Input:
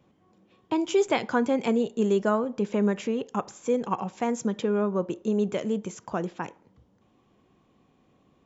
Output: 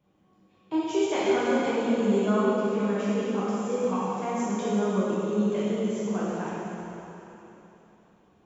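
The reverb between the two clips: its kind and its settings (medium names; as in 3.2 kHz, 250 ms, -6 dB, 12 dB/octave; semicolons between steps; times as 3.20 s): plate-style reverb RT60 3.4 s, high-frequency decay 0.95×, DRR -10 dB; trim -10 dB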